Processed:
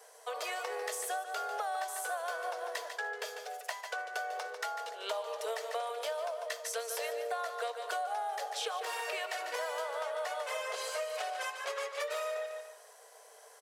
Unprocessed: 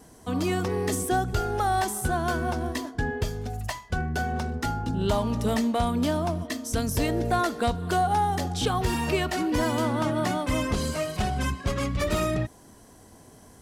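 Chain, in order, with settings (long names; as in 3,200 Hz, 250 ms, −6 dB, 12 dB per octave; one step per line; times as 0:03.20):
on a send: repeating echo 146 ms, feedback 31%, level −10 dB
on the sum: pitch-shifted copies added −4 semitones −12 dB
Chebyshev high-pass with heavy ripple 440 Hz, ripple 3 dB
downward compressor 5 to 1, threshold −34 dBFS, peak gain reduction 11 dB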